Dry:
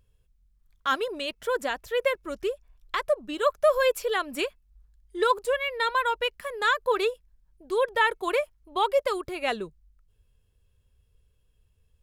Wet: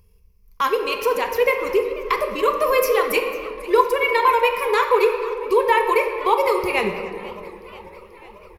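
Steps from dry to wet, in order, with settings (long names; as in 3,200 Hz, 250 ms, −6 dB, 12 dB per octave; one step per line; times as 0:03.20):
tempo change 1.4×
EQ curve with evenly spaced ripples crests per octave 0.83, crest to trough 13 dB
in parallel at +2.5 dB: downward compressor, threshold −28 dBFS, peak gain reduction 15 dB
on the sum: high-shelf EQ 11,000 Hz +8 dB
far-end echo of a speakerphone 290 ms, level −18 dB
on a send at −4 dB: convolution reverb RT60 1.9 s, pre-delay 3 ms
on the sum: feedback echo with a swinging delay time 490 ms, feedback 67%, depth 195 cents, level −19 dB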